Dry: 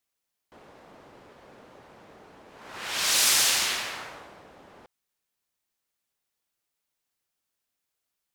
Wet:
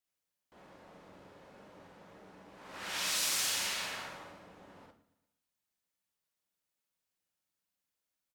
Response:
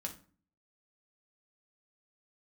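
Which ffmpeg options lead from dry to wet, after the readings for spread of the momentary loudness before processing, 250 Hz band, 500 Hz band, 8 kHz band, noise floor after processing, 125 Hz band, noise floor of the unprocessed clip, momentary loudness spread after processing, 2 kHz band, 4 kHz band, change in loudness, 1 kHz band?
18 LU, −5.0 dB, −6.5 dB, −10.0 dB, below −85 dBFS, −4.5 dB, −83 dBFS, 20 LU, −9.0 dB, −9.5 dB, −10.5 dB, −8.0 dB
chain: -filter_complex "[0:a]acompressor=threshold=-28dB:ratio=2,aecho=1:1:116|232|348|464:0.119|0.0606|0.0309|0.0158,asplit=2[link_01][link_02];[1:a]atrim=start_sample=2205,adelay=44[link_03];[link_02][link_03]afir=irnorm=-1:irlink=0,volume=2dB[link_04];[link_01][link_04]amix=inputs=2:normalize=0,volume=-8.5dB"

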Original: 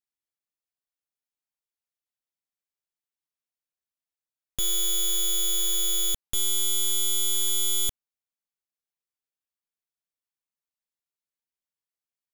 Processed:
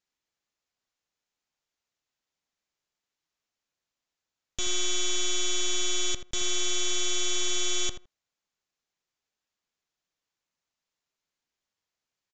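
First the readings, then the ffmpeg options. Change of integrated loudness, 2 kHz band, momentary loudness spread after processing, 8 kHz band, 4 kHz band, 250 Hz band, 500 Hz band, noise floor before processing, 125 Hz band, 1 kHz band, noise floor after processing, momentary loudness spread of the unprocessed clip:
−3.5 dB, +9.5 dB, 3 LU, −3.0 dB, −1.5 dB, can't be measured, +6.0 dB, below −85 dBFS, 0.0 dB, +5.0 dB, below −85 dBFS, 3 LU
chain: -filter_complex "[0:a]aresample=16000,asoftclip=type=hard:threshold=-35dB,aresample=44100,asplit=2[link_01][link_02];[link_02]adelay=81,lowpass=frequency=1800:poles=1,volume=-9dB,asplit=2[link_03][link_04];[link_04]adelay=81,lowpass=frequency=1800:poles=1,volume=0.16[link_05];[link_01][link_03][link_05]amix=inputs=3:normalize=0,volume=9dB"

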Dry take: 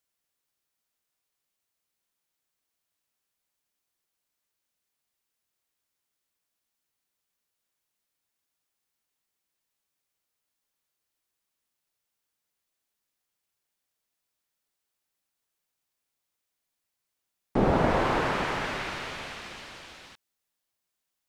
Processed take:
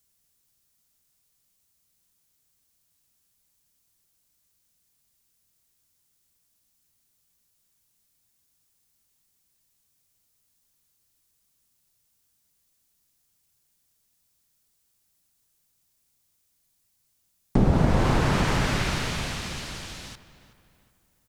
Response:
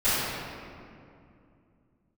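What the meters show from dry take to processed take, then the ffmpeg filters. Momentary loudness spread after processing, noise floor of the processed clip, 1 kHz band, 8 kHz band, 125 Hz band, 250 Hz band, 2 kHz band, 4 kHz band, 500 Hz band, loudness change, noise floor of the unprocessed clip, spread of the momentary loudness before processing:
16 LU, −71 dBFS, −1.0 dB, +10.5 dB, +10.0 dB, +5.0 dB, +1.5 dB, +5.5 dB, −1.0 dB, +2.5 dB, −84 dBFS, 19 LU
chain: -filter_complex "[0:a]bass=frequency=250:gain=14,treble=frequency=4000:gain=10,acompressor=threshold=-23dB:ratio=2.5,asplit=2[link_01][link_02];[link_02]adelay=374,lowpass=frequency=3200:poles=1,volume=-15dB,asplit=2[link_03][link_04];[link_04]adelay=374,lowpass=frequency=3200:poles=1,volume=0.42,asplit=2[link_05][link_06];[link_06]adelay=374,lowpass=frequency=3200:poles=1,volume=0.42,asplit=2[link_07][link_08];[link_08]adelay=374,lowpass=frequency=3200:poles=1,volume=0.42[link_09];[link_01][link_03][link_05][link_07][link_09]amix=inputs=5:normalize=0,volume=3.5dB"

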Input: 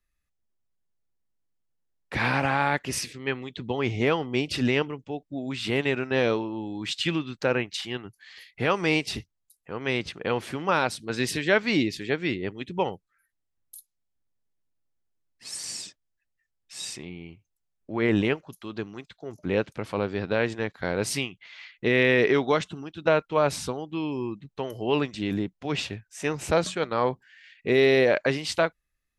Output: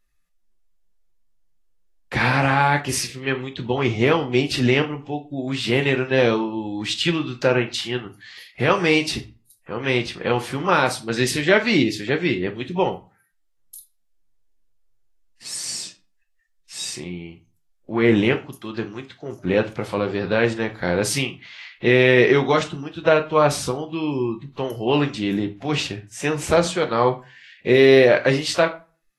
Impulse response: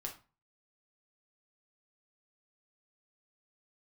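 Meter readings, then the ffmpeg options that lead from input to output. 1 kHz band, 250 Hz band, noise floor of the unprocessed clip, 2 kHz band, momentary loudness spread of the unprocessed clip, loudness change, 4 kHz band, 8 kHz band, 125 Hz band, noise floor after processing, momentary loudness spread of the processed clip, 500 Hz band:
+6.0 dB, +6.0 dB, −79 dBFS, +5.5 dB, 14 LU, +6.0 dB, +6.0 dB, +6.5 dB, +7.5 dB, −65 dBFS, 14 LU, +6.0 dB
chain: -filter_complex "[0:a]asplit=2[link_01][link_02];[1:a]atrim=start_sample=2205[link_03];[link_02][link_03]afir=irnorm=-1:irlink=0,volume=3dB[link_04];[link_01][link_04]amix=inputs=2:normalize=0" -ar 48000 -c:a libvorbis -b:a 32k

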